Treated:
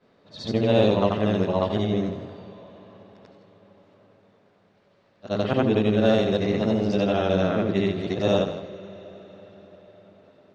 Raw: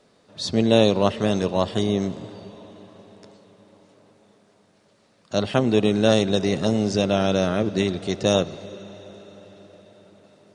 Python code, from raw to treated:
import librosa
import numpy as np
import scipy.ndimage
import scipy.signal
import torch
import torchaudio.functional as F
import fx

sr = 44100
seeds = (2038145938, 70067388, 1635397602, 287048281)

p1 = fx.frame_reverse(x, sr, frame_ms=191.0)
p2 = scipy.signal.sosfilt(scipy.signal.butter(2, 3100.0, 'lowpass', fs=sr, output='sos'), p1)
p3 = np.clip(p2, -10.0 ** (-16.0 / 20.0), 10.0 ** (-16.0 / 20.0))
p4 = p2 + (p3 * 10.0 ** (-11.0 / 20.0))
y = p4 + 10.0 ** (-12.5 / 20.0) * np.pad(p4, (int(162 * sr / 1000.0), 0))[:len(p4)]